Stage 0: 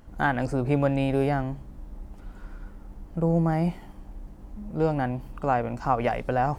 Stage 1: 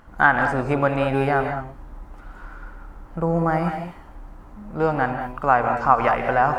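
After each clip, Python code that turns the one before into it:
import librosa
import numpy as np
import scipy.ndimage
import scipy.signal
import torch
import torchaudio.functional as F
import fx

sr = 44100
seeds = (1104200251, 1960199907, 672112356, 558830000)

y = fx.peak_eq(x, sr, hz=1300.0, db=13.0, octaves=1.7)
y = fx.rev_gated(y, sr, seeds[0], gate_ms=230, shape='rising', drr_db=5.5)
y = y * 10.0 ** (-1.0 / 20.0)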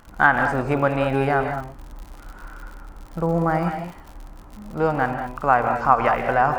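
y = fx.dmg_crackle(x, sr, seeds[1], per_s=91.0, level_db=-34.0)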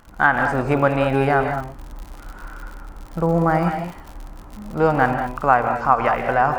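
y = fx.rider(x, sr, range_db=10, speed_s=0.5)
y = y * 10.0 ** (2.5 / 20.0)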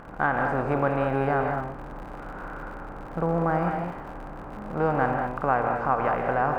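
y = fx.bin_compress(x, sr, power=0.6)
y = fx.high_shelf(y, sr, hz=2200.0, db=-11.0)
y = y * 10.0 ** (-8.5 / 20.0)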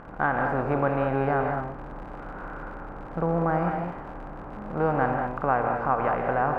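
y = fx.lowpass(x, sr, hz=3100.0, slope=6)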